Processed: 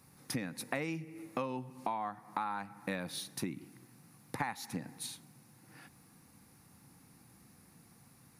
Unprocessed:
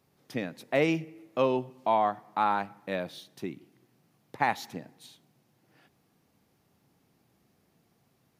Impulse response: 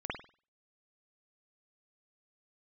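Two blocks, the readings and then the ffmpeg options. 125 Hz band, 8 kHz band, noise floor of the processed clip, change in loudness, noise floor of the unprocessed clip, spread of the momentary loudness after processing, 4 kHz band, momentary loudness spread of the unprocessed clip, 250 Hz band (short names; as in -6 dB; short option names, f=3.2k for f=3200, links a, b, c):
-4.0 dB, +7.0 dB, -63 dBFS, -9.5 dB, -71 dBFS, 19 LU, -2.5 dB, 14 LU, -6.5 dB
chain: -af "equalizer=f=400:t=o:w=0.33:g=-11,equalizer=f=630:t=o:w=0.33:g=-11,equalizer=f=3.15k:t=o:w=0.33:g=-9,equalizer=f=10k:t=o:w=0.33:g=11,acompressor=threshold=-42dB:ratio=12,volume=8.5dB"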